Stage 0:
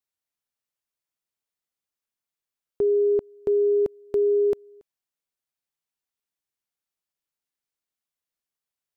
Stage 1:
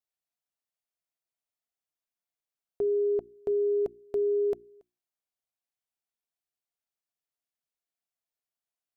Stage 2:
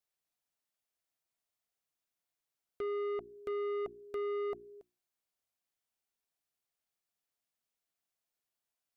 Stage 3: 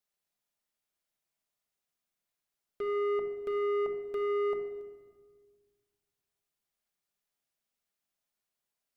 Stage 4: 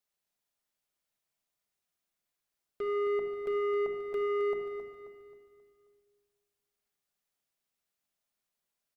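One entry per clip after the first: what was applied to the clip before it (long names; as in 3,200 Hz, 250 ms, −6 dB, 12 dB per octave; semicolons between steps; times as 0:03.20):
parametric band 690 Hz +8.5 dB 0.27 octaves; mains-hum notches 60/120/180/240/300/360 Hz; level −6 dB
in parallel at −0.5 dB: downward compressor, threshold −36 dBFS, peak gain reduction 10.5 dB; on the sum: soft clipping −30.5 dBFS, distortion −11 dB; level −3.5 dB
floating-point word with a short mantissa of 6 bits; rectangular room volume 1,600 cubic metres, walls mixed, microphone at 1.3 metres
repeating echo 267 ms, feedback 43%, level −9 dB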